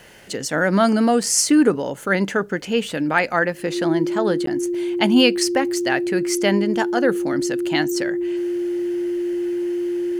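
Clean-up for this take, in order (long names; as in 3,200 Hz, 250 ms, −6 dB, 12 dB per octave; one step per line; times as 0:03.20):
notch filter 350 Hz, Q 30
repair the gap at 0:04.46, 13 ms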